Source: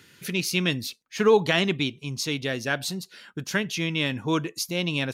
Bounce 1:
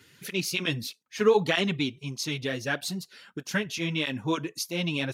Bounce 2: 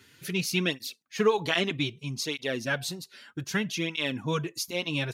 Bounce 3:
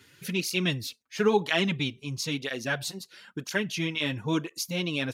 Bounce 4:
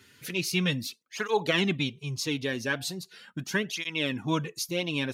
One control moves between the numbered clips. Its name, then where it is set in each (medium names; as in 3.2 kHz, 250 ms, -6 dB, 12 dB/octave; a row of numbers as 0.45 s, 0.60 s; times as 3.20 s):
cancelling through-zero flanger, nulls at: 1.6 Hz, 0.63 Hz, 1 Hz, 0.39 Hz